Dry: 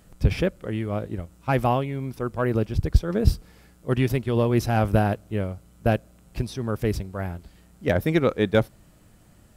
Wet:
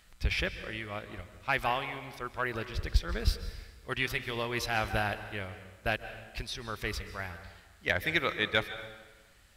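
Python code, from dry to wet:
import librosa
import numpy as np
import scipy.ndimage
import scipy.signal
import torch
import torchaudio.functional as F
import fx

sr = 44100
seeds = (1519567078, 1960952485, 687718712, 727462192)

y = fx.graphic_eq_10(x, sr, hz=(125, 250, 500, 2000, 4000), db=(-11, -9, -6, 8, 8))
y = fx.rev_plate(y, sr, seeds[0], rt60_s=1.3, hf_ratio=0.8, predelay_ms=120, drr_db=11.0)
y = y * 10.0 ** (-5.5 / 20.0)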